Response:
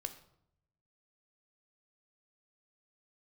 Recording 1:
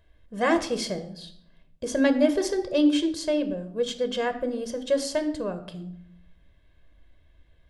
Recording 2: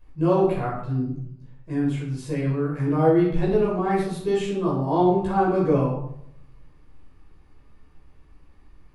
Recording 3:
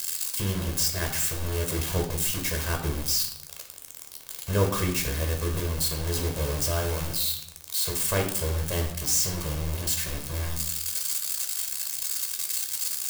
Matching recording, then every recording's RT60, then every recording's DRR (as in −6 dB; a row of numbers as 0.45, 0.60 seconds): 1; 0.75, 0.70, 0.70 seconds; 8.5, −7.0, 2.5 decibels